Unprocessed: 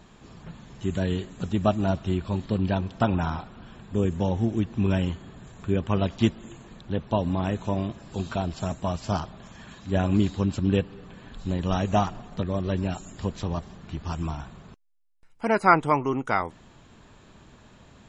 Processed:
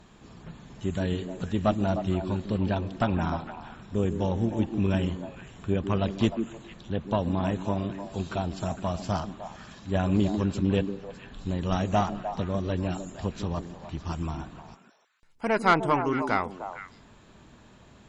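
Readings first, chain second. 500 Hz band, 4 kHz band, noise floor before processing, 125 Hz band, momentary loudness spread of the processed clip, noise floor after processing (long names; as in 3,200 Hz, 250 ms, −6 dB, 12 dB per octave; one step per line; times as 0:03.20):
−1.0 dB, −1.0 dB, −53 dBFS, −2.0 dB, 14 LU, −55 dBFS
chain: tube saturation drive 12 dB, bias 0.45
echo through a band-pass that steps 152 ms, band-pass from 280 Hz, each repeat 1.4 octaves, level −4 dB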